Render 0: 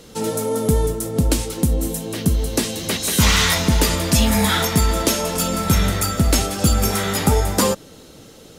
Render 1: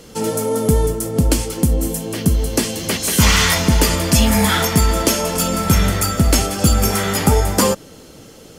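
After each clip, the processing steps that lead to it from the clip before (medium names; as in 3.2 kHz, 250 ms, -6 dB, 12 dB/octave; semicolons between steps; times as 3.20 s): band-stop 3.8 kHz, Q 10; trim +2.5 dB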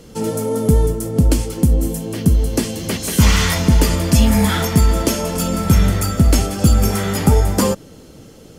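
bass shelf 410 Hz +7.5 dB; trim -4.5 dB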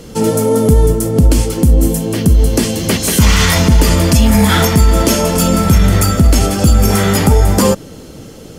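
peak limiter -9 dBFS, peak gain reduction 7 dB; trim +8 dB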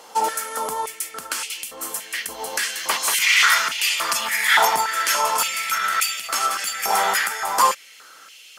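step-sequenced high-pass 3.5 Hz 860–2600 Hz; trim -5.5 dB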